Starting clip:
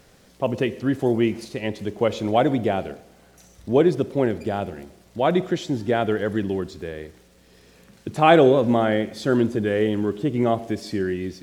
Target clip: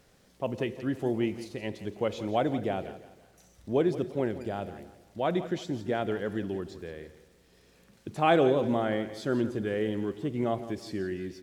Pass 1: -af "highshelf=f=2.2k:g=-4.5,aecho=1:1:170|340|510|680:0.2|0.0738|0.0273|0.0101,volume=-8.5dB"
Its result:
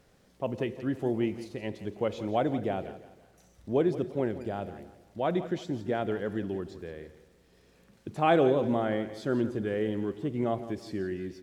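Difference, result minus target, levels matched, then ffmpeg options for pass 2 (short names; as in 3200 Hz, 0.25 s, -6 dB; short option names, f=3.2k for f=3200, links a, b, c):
4000 Hz band -3.0 dB
-af "aecho=1:1:170|340|510|680:0.2|0.0738|0.0273|0.0101,volume=-8.5dB"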